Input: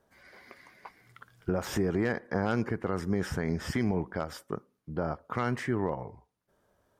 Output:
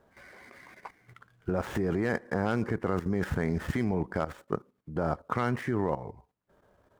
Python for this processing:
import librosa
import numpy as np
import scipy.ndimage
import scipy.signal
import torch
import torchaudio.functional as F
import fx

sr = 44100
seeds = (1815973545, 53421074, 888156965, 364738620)

y = scipy.signal.medfilt(x, 9)
y = fx.level_steps(y, sr, step_db=12)
y = y * librosa.db_to_amplitude(8.0)